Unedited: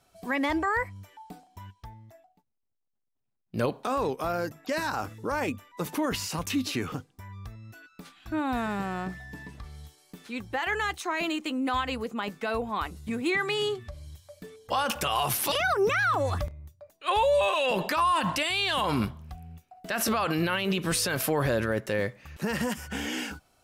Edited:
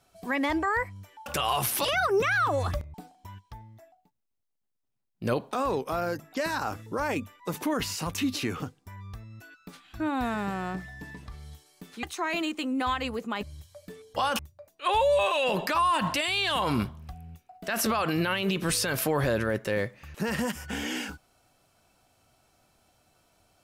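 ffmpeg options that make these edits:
-filter_complex "[0:a]asplit=6[s0][s1][s2][s3][s4][s5];[s0]atrim=end=1.262[s6];[s1]atrim=start=14.928:end=16.612[s7];[s2]atrim=start=1.258:end=10.352[s8];[s3]atrim=start=10.898:end=12.302[s9];[s4]atrim=start=13.968:end=14.932[s10];[s5]atrim=start=16.608[s11];[s6][s7]acrossfade=d=0.004:c1=hsin:c2=hsin[s12];[s12][s8]acrossfade=d=0.004:c1=hsin:c2=hsin[s13];[s13][s9]acrossfade=d=0.004:c1=hsin:c2=hsin[s14];[s14][s10]acrossfade=d=0.004:c1=hsin:c2=hsin[s15];[s15][s11]acrossfade=d=0.004:c1=hsin:c2=hsin"

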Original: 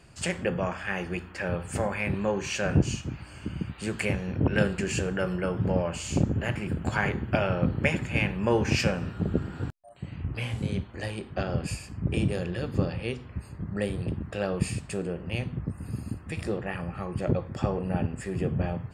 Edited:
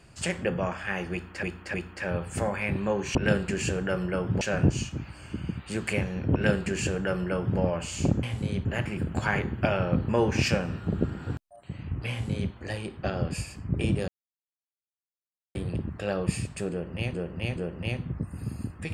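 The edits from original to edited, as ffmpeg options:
-filter_complex "[0:a]asplit=12[s0][s1][s2][s3][s4][s5][s6][s7][s8][s9][s10][s11];[s0]atrim=end=1.432[s12];[s1]atrim=start=1.118:end=1.432[s13];[s2]atrim=start=1.118:end=2.532[s14];[s3]atrim=start=4.448:end=5.712[s15];[s4]atrim=start=2.528:end=6.352[s16];[s5]atrim=start=10.428:end=10.852[s17];[s6]atrim=start=6.348:end=7.792[s18];[s7]atrim=start=8.418:end=12.41,asetpts=PTS-STARTPTS,afade=t=out:st=3.988:d=0.004:c=hsin[s19];[s8]atrim=start=12.41:end=13.88,asetpts=PTS-STARTPTS,volume=0[s20];[s9]atrim=start=13.88:end=15.472,asetpts=PTS-STARTPTS,afade=t=in:d=0.004:c=hsin[s21];[s10]atrim=start=15.038:end=15.472[s22];[s11]atrim=start=15.038[s23];[s12][s13]acrossfade=d=0.004:c1=hsin:c2=hsin[s24];[s24][s14]acrossfade=d=0.004:c1=hsin:c2=hsin[s25];[s25][s15]acrossfade=d=0.004:c1=hsin:c2=hsin[s26];[s26][s16]acrossfade=d=0.004:c1=hsin:c2=hsin[s27];[s27][s17]acrossfade=d=0.004:c1=hsin:c2=hsin[s28];[s28][s18]acrossfade=d=0.004:c1=hsin:c2=hsin[s29];[s19][s20][s21]concat=n=3:v=0:a=1[s30];[s29][s30]acrossfade=d=0.004:c1=hsin:c2=hsin[s31];[s31][s22]acrossfade=d=0.004:c1=hsin:c2=hsin[s32];[s32][s23]acrossfade=d=0.004:c1=hsin:c2=hsin"

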